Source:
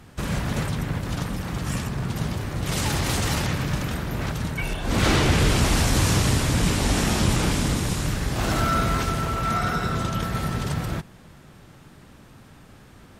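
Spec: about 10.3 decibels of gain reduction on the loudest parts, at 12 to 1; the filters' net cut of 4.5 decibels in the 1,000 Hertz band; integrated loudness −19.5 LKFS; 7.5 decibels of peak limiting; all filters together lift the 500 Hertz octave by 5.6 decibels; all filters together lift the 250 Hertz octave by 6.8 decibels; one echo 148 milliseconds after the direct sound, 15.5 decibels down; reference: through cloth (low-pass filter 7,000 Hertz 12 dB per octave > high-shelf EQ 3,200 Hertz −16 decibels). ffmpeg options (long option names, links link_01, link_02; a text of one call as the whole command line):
ffmpeg -i in.wav -af "equalizer=frequency=250:width_type=o:gain=8,equalizer=frequency=500:width_type=o:gain=6.5,equalizer=frequency=1000:width_type=o:gain=-6.5,acompressor=threshold=-23dB:ratio=12,alimiter=limit=-21.5dB:level=0:latency=1,lowpass=7000,highshelf=frequency=3200:gain=-16,aecho=1:1:148:0.168,volume=11.5dB" out.wav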